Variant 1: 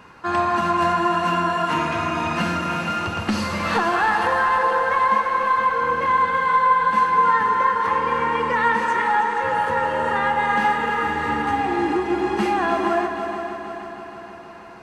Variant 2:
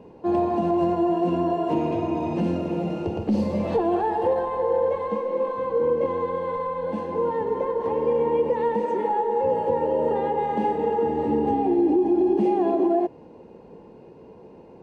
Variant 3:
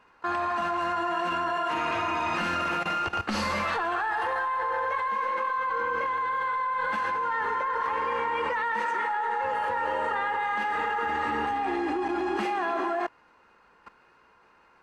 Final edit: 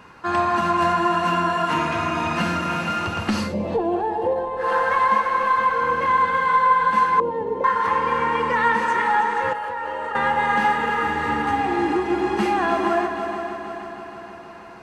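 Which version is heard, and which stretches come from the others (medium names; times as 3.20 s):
1
3.47–4.64 s: from 2, crossfade 0.16 s
7.20–7.64 s: from 2
9.53–10.15 s: from 3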